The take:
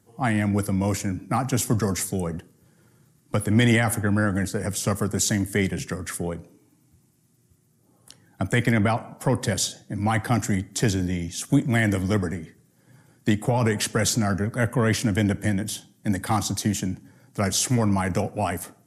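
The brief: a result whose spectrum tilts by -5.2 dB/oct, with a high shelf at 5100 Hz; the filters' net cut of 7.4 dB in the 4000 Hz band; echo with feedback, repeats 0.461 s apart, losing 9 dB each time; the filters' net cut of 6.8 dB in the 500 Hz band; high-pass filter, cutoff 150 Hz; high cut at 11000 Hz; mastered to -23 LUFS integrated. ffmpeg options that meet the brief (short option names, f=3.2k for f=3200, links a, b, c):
-af "highpass=150,lowpass=11k,equalizer=f=500:t=o:g=-8.5,equalizer=f=4k:t=o:g=-7,highshelf=f=5.1k:g=-6,aecho=1:1:461|922|1383|1844:0.355|0.124|0.0435|0.0152,volume=5dB"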